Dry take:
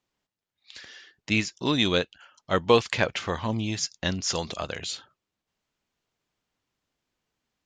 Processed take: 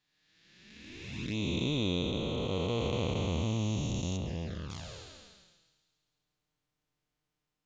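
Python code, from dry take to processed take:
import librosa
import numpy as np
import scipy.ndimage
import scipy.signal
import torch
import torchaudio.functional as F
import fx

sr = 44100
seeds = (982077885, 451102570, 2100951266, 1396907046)

y = fx.spec_blur(x, sr, span_ms=786.0)
y = fx.low_shelf(y, sr, hz=140.0, db=9.0)
y = fx.env_flanger(y, sr, rest_ms=6.7, full_db=-29.0)
y = fx.air_absorb(y, sr, metres=280.0, at=(4.16, 4.69), fade=0.02)
y = fx.echo_wet_highpass(y, sr, ms=137, feedback_pct=66, hz=2800.0, wet_db=-15.5)
y = y * librosa.db_to_amplitude(-1.0)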